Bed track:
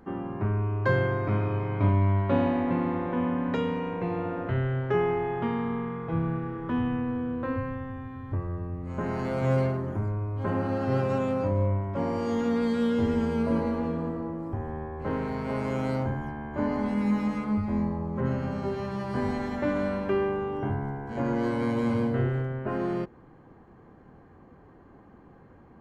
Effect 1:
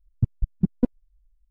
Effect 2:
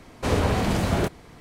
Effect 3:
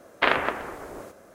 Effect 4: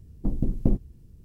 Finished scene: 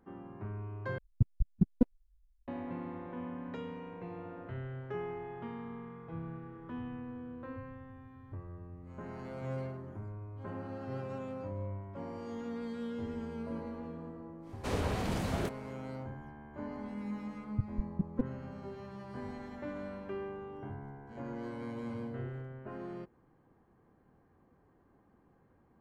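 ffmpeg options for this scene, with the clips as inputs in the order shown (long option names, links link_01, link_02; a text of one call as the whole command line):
ffmpeg -i bed.wav -i cue0.wav -i cue1.wav -filter_complex "[1:a]asplit=2[link_01][link_02];[0:a]volume=-14dB,asplit=2[link_03][link_04];[link_03]atrim=end=0.984[link_05];[link_01]atrim=end=1.5,asetpts=PTS-STARTPTS,volume=-5.5dB[link_06];[link_04]atrim=start=2.476[link_07];[2:a]atrim=end=1.4,asetpts=PTS-STARTPTS,volume=-11dB,afade=type=in:duration=0.1,afade=type=out:start_time=1.3:duration=0.1,adelay=14410[link_08];[link_02]atrim=end=1.5,asetpts=PTS-STARTPTS,volume=-11dB,afade=type=in:duration=0.004:curve=hsin,afade=type=out:start_time=1.496:duration=0.004:curve=hsin,adelay=17360[link_09];[link_05][link_06]acrossfade=duration=0.004:curve1=hsin:curve2=hsin[link_10];[link_10][link_07]acrossfade=duration=0.004:curve1=hsin:curve2=hsin[link_11];[link_11][link_08][link_09]amix=inputs=3:normalize=0" out.wav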